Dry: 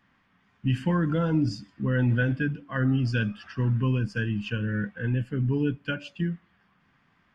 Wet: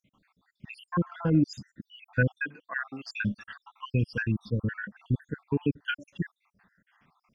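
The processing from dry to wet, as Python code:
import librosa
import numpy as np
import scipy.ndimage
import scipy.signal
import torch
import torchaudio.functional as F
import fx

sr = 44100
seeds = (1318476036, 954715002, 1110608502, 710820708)

y = fx.spec_dropout(x, sr, seeds[0], share_pct=70)
y = fx.high_shelf(y, sr, hz=3100.0, db=-9.5, at=(0.88, 1.48), fade=0.02)
y = fx.highpass(y, sr, hz=590.0, slope=12, at=(2.39, 3.14))
y = y * 10.0 ** (2.0 / 20.0)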